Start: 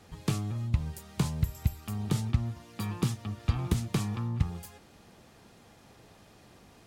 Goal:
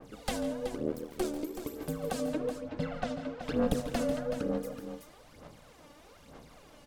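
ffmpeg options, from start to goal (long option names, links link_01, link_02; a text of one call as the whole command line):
ffmpeg -i in.wav -filter_complex "[0:a]asettb=1/sr,asplit=3[link_01][link_02][link_03];[link_01]atrim=end=2.314[link_04];[link_02]atrim=start=2.31:end=3.42,asetpts=PTS-STARTPTS,afade=type=in:duration=0.004:curve=qsin,afade=type=out:start_time=1.106:duration=0.004:curve=qsin,lowpass=4100[link_05];[link_03]atrim=start=3.416[link_06];[link_04][link_05]acrossfade=duration=0.004:curve1=hsin:curve2=qsin[link_07];[link_07][link_06]acrossfade=duration=0.004:curve1=qsin:curve2=hsin,acrossover=split=270|1400[link_08][link_09][link_10];[link_08]alimiter=level_in=0.5dB:limit=-24dB:level=0:latency=1,volume=-0.5dB[link_11];[link_11][link_09][link_10]amix=inputs=3:normalize=0,asettb=1/sr,asplit=3[link_12][link_13][link_14];[link_12]atrim=end=0.664[link_15];[link_13]atrim=start=0.66:end=1.67,asetpts=PTS-STARTPTS,afade=type=in:duration=0.004:curve=qsin,afade=type=out:start_time=1.006:duration=0.004:curve=qsin,aeval=exprs='max(val(0),0)':channel_layout=same[link_16];[link_14]atrim=start=1.666[link_17];[link_15][link_16]acrossfade=duration=0.004:curve1=hsin:curve2=qsin[link_18];[link_18][link_17]acrossfade=duration=0.004:curve1=qsin:curve2=hsin,aeval=exprs='val(0)*sin(2*PI*370*n/s)':channel_layout=same,aphaser=in_gain=1:out_gain=1:delay=3.5:decay=0.69:speed=1.1:type=sinusoidal,asplit=2[link_19][link_20];[link_20]aecho=0:1:77|142|166|376:0.119|0.168|0.178|0.355[link_21];[link_19][link_21]amix=inputs=2:normalize=0,adynamicequalizer=threshold=0.00398:dfrequency=1900:dqfactor=0.7:tfrequency=1900:tqfactor=0.7:attack=5:release=100:ratio=0.375:range=2:mode=cutabove:tftype=highshelf" out.wav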